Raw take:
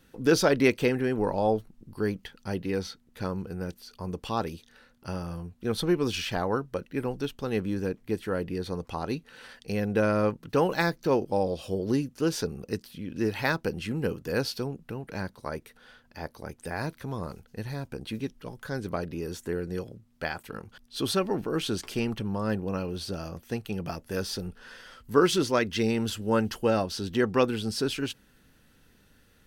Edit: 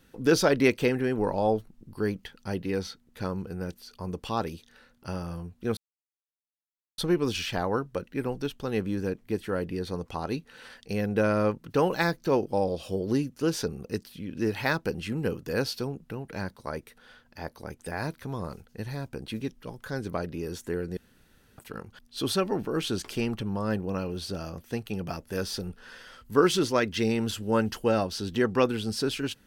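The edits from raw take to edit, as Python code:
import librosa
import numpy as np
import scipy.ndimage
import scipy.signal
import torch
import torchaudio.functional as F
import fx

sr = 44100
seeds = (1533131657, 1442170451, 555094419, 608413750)

y = fx.edit(x, sr, fx.insert_silence(at_s=5.77, length_s=1.21),
    fx.room_tone_fill(start_s=19.76, length_s=0.61), tone=tone)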